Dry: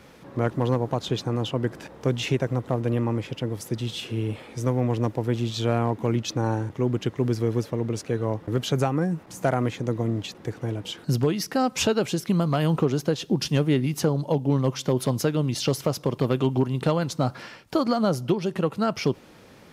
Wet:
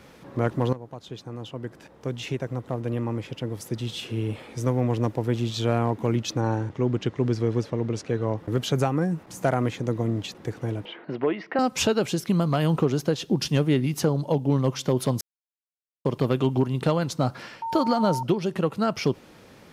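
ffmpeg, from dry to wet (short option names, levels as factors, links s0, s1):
-filter_complex "[0:a]asettb=1/sr,asplit=3[s0][s1][s2];[s0]atrim=end=6.404[s3];[s1]atrim=start=6.4:end=8.38,asetpts=PTS-STARTPTS,afade=t=in:d=0.004:c=qsin,afade=t=out:st=1.976:d=0.004:c=qsin,lowpass=6700[s4];[s2]atrim=start=8.376[s5];[s3][s4]acrossfade=d=0.004:c1=hsin:c2=qsin[s6];[s6][s5]acrossfade=d=0.004:c1=qsin:c2=hsin,asettb=1/sr,asplit=3[s7][s8][s9];[s7]atrim=end=10.854[s10];[s8]atrim=start=10.85:end=11.59,asetpts=PTS-STARTPTS,afade=t=in:d=0.004:c=qsin,afade=t=out:st=0.736:d=0.004:c=qsin,highpass=330,equalizer=f=340:t=q:w=4:g=4,equalizer=f=650:t=q:w=4:g=5,equalizer=f=980:t=q:w=4:g=3,equalizer=f=2000:t=q:w=4:g=6,lowpass=f=2700:w=0.5412,lowpass=f=2700:w=1.3066[s11];[s9]atrim=start=11.586[s12];[s10][s11]acrossfade=d=0.004:c1=hsin:c2=qsin[s13];[s13][s12]acrossfade=d=0.004:c1=qsin:c2=hsin,asettb=1/sr,asplit=3[s14][s15][s16];[s14]atrim=end=17.624[s17];[s15]atrim=start=17.62:end=18.23,asetpts=PTS-STARTPTS,afade=t=in:d=0.004:c=qsin,afade=t=out:st=0.606:d=0.004:c=qsin,aeval=exprs='val(0)+0.0447*sin(2*PI*910*n/s)':c=same[s18];[s16]atrim=start=18.226[s19];[s17][s18]acrossfade=d=0.004:c1=hsin:c2=qsin[s20];[s20][s19]acrossfade=d=0.004:c1=qsin:c2=hsin,asplit=4[s21][s22][s23][s24];[s21]atrim=end=0.73,asetpts=PTS-STARTPTS,afade=t=out:st=0.726:d=0.004:c=hsin:silence=0.16788[s25];[s22]atrim=start=0.73:end=15.21,asetpts=PTS-STARTPTS,afade=t=in:d=3.72:silence=0.16788,afade=t=out:st=14.476:d=0.004:c=hsin[s26];[s23]atrim=start=15.21:end=16.05,asetpts=PTS-STARTPTS,volume=0[s27];[s24]atrim=start=16.05,asetpts=PTS-STARTPTS,afade=t=in:d=0.004:c=hsin[s28];[s25][s26][s27][s28]concat=n=4:v=0:a=1"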